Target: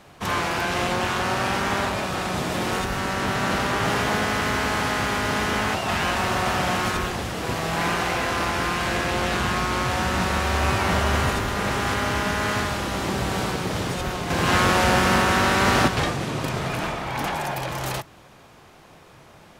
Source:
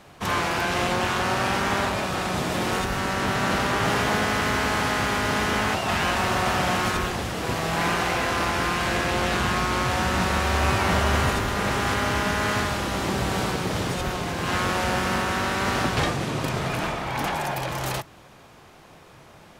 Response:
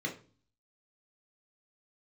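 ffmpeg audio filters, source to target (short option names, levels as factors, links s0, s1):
-filter_complex "[0:a]asettb=1/sr,asplit=3[s0][s1][s2];[s0]atrim=end=14.304[s3];[s1]atrim=start=14.3:end=15.88,asetpts=PTS-STARTPTS,afade=t=in:d=0.004:c=qsin,afade=t=out:st=1.576:d=0.004:c=qsin,acontrast=44[s4];[s2]atrim=start=15.876[s5];[s3][s4]acrossfade=d=0.004:c1=hsin:c2=qsin[s6];[s6][s5]acrossfade=d=0.004:c1=qsin:c2=hsin"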